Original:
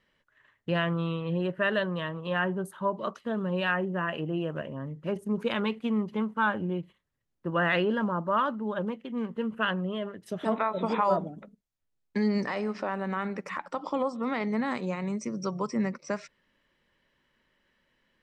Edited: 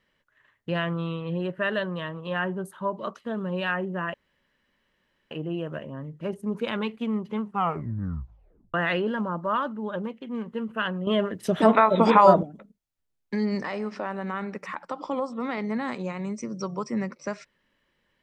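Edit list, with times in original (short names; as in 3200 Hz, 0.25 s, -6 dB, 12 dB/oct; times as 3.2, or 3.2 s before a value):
4.14 insert room tone 1.17 s
6.25 tape stop 1.32 s
9.9–11.26 gain +10 dB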